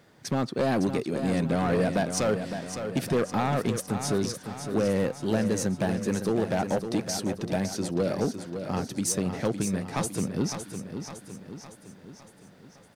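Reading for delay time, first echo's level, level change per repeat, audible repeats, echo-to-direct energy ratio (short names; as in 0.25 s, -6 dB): 0.559 s, -8.5 dB, -5.5 dB, 5, -7.0 dB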